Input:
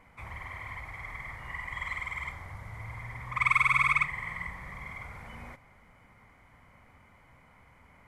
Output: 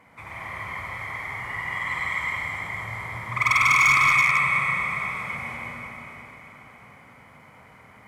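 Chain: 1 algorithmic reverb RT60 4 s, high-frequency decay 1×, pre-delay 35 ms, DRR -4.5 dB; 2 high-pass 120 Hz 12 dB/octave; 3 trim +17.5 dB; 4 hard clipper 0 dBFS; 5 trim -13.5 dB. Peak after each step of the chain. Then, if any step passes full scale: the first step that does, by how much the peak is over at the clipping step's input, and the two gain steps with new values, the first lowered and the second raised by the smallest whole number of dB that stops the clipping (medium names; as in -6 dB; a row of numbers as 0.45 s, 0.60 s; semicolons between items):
-9.0 dBFS, -9.0 dBFS, +8.5 dBFS, 0.0 dBFS, -13.5 dBFS; step 3, 8.5 dB; step 3 +8.5 dB, step 5 -4.5 dB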